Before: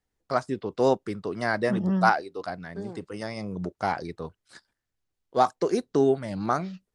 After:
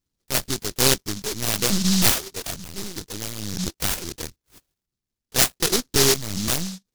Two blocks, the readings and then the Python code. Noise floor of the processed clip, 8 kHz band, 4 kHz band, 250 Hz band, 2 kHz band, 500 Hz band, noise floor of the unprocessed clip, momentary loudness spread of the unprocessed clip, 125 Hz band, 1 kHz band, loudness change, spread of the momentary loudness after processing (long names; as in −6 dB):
below −85 dBFS, +27.0 dB, +20.0 dB, +1.0 dB, +2.5 dB, −3.0 dB, −83 dBFS, 13 LU, +4.5 dB, −7.0 dB, +5.5 dB, 15 LU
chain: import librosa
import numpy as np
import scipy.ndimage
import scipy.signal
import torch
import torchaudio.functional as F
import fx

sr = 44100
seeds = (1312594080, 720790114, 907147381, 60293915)

p1 = scipy.signal.sosfilt(scipy.signal.butter(4, 45.0, 'highpass', fs=sr, output='sos'), x)
p2 = fx.dynamic_eq(p1, sr, hz=150.0, q=2.1, threshold_db=-38.0, ratio=4.0, max_db=4)
p3 = fx.sample_hold(p2, sr, seeds[0], rate_hz=2700.0, jitter_pct=0)
p4 = p2 + F.gain(torch.from_numpy(p3), -3.5).numpy()
p5 = fx.lpc_vocoder(p4, sr, seeds[1], excitation='pitch_kept', order=16)
p6 = fx.noise_mod_delay(p5, sr, seeds[2], noise_hz=5000.0, depth_ms=0.43)
y = F.gain(torch.from_numpy(p6), -1.0).numpy()